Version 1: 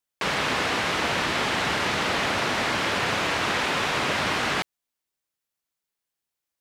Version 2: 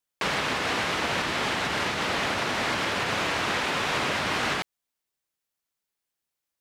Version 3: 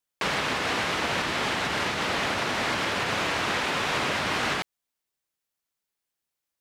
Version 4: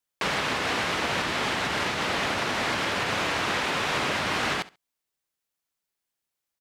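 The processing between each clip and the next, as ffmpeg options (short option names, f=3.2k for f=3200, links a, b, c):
-af "alimiter=limit=-17dB:level=0:latency=1:release=160"
-af anull
-af "aecho=1:1:68|136:0.112|0.0213"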